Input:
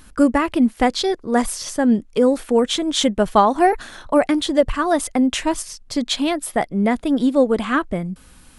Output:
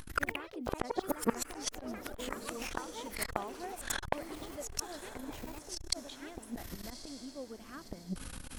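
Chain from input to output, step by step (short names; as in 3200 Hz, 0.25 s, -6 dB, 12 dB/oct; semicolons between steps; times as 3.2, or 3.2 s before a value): flipped gate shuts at -17 dBFS, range -34 dB; echoes that change speed 88 ms, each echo +4 st, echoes 3; diffused feedback echo 1.12 s, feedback 43%, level -14.5 dB; core saturation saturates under 1000 Hz; gain +5 dB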